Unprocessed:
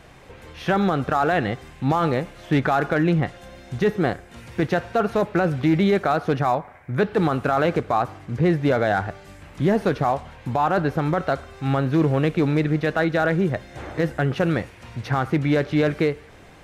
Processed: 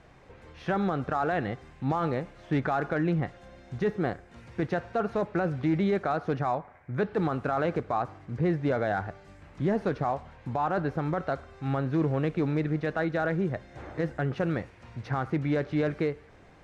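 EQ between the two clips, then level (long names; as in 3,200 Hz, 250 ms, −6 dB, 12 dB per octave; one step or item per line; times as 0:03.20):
high-frequency loss of the air 73 metres
parametric band 3,100 Hz −4 dB 0.9 octaves
−7.0 dB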